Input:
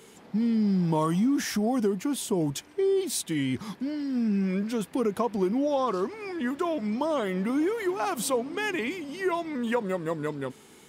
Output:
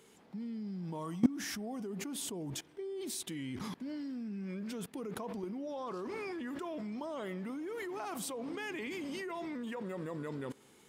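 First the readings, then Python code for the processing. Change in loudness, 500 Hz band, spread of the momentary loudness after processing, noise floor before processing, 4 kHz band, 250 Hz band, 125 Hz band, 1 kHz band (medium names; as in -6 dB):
-12.0 dB, -13.5 dB, 3 LU, -53 dBFS, -8.5 dB, -11.5 dB, -12.5 dB, -13.0 dB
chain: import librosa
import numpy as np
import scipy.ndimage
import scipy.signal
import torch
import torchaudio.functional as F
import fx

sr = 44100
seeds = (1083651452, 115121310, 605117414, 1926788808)

y = fx.rev_spring(x, sr, rt60_s=1.0, pass_ms=(39, 51, 60), chirp_ms=50, drr_db=19.5)
y = fx.level_steps(y, sr, step_db=22)
y = y * 10.0 ** (4.0 / 20.0)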